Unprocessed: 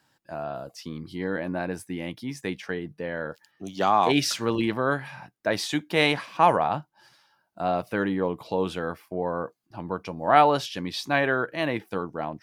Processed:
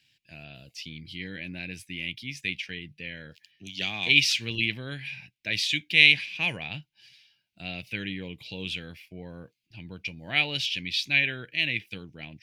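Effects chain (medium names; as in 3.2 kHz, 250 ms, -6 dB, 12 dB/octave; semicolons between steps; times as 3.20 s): FFT filter 110 Hz 0 dB, 1.2 kHz -26 dB, 2.4 kHz +13 dB, 8.6 kHz -4 dB; trim -1 dB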